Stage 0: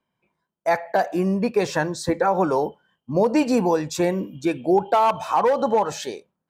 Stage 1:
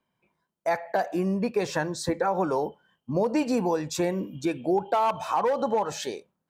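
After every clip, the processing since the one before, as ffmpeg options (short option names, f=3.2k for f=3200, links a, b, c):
-af "acompressor=threshold=-31dB:ratio=1.5"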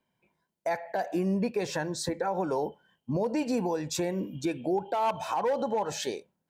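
-af "equalizer=f=1.2k:w=7:g=-10.5,alimiter=limit=-20dB:level=0:latency=1:release=206"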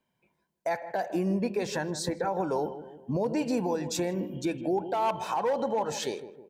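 -filter_complex "[0:a]asplit=2[a][b];[b]adelay=158,lowpass=f=930:p=1,volume=-11dB,asplit=2[c][d];[d]adelay=158,lowpass=f=930:p=1,volume=0.52,asplit=2[e][f];[f]adelay=158,lowpass=f=930:p=1,volume=0.52,asplit=2[g][h];[h]adelay=158,lowpass=f=930:p=1,volume=0.52,asplit=2[i][j];[j]adelay=158,lowpass=f=930:p=1,volume=0.52,asplit=2[k][l];[l]adelay=158,lowpass=f=930:p=1,volume=0.52[m];[a][c][e][g][i][k][m]amix=inputs=7:normalize=0"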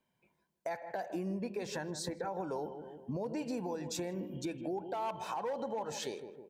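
-af "acompressor=threshold=-38dB:ratio=2,volume=-2dB"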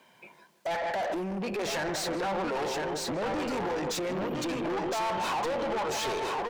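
-filter_complex "[0:a]aeval=exprs='(tanh(126*val(0)+0.4)-tanh(0.4))/126':c=same,asplit=2[a][b];[b]aecho=0:1:1012:0.473[c];[a][c]amix=inputs=2:normalize=0,asplit=2[d][e];[e]highpass=f=720:p=1,volume=28dB,asoftclip=type=tanh:threshold=-27.5dB[f];[d][f]amix=inputs=2:normalize=0,lowpass=f=4.2k:p=1,volume=-6dB,volume=4.5dB"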